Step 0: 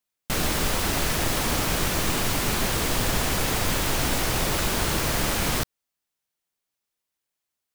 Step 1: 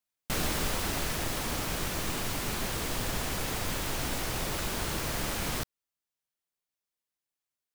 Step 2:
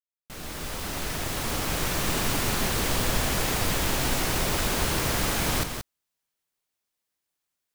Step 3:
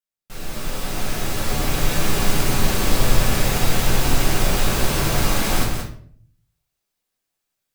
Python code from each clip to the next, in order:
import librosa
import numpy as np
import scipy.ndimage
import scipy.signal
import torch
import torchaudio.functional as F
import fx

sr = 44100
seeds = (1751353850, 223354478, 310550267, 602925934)

y1 = fx.rider(x, sr, range_db=10, speed_s=2.0)
y1 = y1 * librosa.db_to_amplitude(-8.0)
y2 = fx.fade_in_head(y1, sr, length_s=2.14)
y2 = y2 + 10.0 ** (-7.0 / 20.0) * np.pad(y2, (int(178 * sr / 1000.0), 0))[:len(y2)]
y2 = y2 * librosa.db_to_amplitude(6.0)
y3 = fx.room_shoebox(y2, sr, seeds[0], volume_m3=63.0, walls='mixed', distance_m=1.1)
y3 = y3 * librosa.db_to_amplitude(-1.0)